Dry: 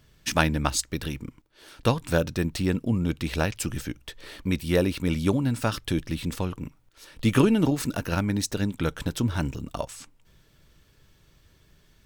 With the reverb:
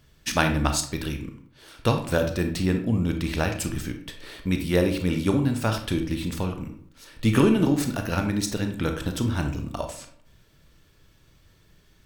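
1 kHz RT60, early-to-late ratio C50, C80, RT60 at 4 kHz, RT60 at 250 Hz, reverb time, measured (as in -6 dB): 0.60 s, 8.5 dB, 12.5 dB, 0.40 s, 0.65 s, 0.65 s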